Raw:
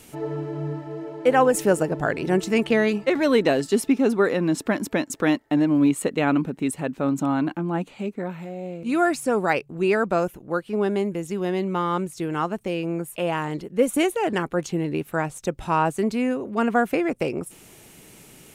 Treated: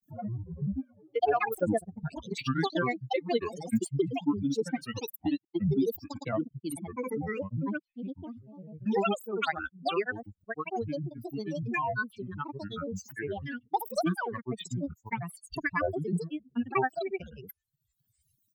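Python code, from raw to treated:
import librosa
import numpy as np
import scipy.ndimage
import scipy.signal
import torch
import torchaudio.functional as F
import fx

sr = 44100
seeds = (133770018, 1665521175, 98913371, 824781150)

y = fx.bin_expand(x, sr, power=3.0)
y = fx.granulator(y, sr, seeds[0], grain_ms=100.0, per_s=20.0, spray_ms=100.0, spread_st=12)
y = fx.band_squash(y, sr, depth_pct=70)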